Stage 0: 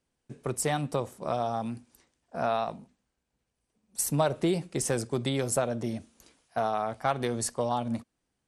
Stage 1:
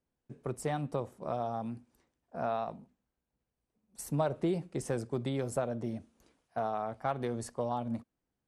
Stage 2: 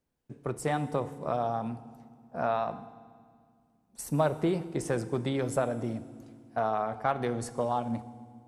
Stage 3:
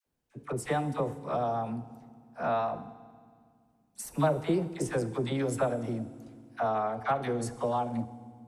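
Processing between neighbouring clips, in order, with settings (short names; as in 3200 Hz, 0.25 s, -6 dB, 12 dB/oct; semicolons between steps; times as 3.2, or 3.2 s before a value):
high shelf 2200 Hz -11 dB; gain -4 dB
FDN reverb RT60 2 s, low-frequency decay 1.5×, high-frequency decay 0.9×, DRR 12.5 dB; dynamic EQ 1600 Hz, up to +4 dB, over -46 dBFS, Q 0.74; gain +3 dB
dispersion lows, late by 65 ms, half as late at 760 Hz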